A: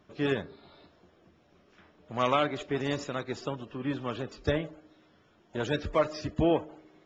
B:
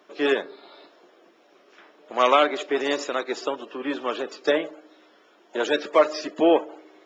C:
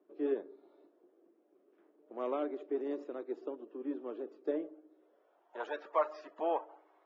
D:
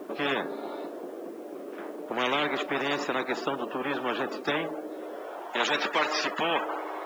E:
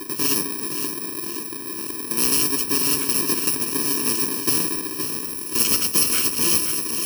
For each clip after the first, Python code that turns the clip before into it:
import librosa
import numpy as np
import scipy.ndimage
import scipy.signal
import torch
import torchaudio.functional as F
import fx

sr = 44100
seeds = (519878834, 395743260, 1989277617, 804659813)

y1 = scipy.signal.sosfilt(scipy.signal.butter(4, 320.0, 'highpass', fs=sr, output='sos'), x)
y1 = F.gain(torch.from_numpy(y1), 8.5).numpy()
y2 = fx.filter_sweep_bandpass(y1, sr, from_hz=330.0, to_hz=920.0, start_s=4.89, end_s=5.52, q=2.1)
y2 = F.gain(torch.from_numpy(y2), -7.5).numpy()
y3 = fx.spectral_comp(y2, sr, ratio=4.0)
y3 = F.gain(torch.from_numpy(y3), 6.5).numpy()
y4 = fx.bit_reversed(y3, sr, seeds[0], block=64)
y4 = fx.echo_feedback(y4, sr, ms=521, feedback_pct=52, wet_db=-8)
y4 = F.gain(torch.from_numpy(y4), 7.5).numpy()